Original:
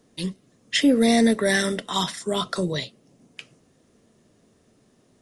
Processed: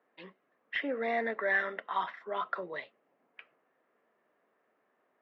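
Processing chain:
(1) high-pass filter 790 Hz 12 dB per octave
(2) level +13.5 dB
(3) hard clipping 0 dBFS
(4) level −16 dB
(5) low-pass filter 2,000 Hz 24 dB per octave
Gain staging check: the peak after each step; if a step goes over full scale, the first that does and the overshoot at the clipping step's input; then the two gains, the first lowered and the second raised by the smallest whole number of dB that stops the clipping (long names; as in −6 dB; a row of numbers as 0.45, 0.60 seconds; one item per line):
−10.5, +3.0, 0.0, −16.0, −17.5 dBFS
step 2, 3.0 dB
step 2 +10.5 dB, step 4 −13 dB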